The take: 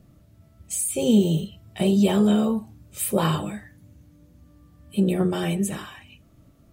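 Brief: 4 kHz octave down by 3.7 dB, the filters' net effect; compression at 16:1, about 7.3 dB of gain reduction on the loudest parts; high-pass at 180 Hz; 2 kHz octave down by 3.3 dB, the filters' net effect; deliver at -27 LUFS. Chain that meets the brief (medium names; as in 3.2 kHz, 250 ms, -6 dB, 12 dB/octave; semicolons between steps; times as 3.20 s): high-pass 180 Hz; peaking EQ 2 kHz -3.5 dB; peaking EQ 4 kHz -3.5 dB; compression 16:1, threshold -22 dBFS; trim +1.5 dB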